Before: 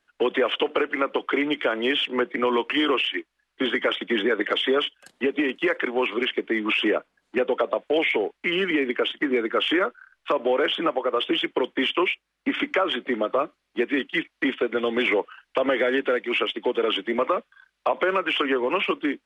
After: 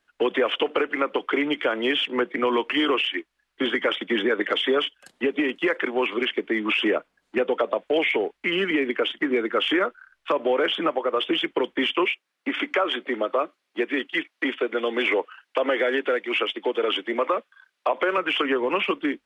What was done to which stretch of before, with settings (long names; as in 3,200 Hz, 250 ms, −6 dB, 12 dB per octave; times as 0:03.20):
0:12.05–0:18.18: high-pass filter 280 Hz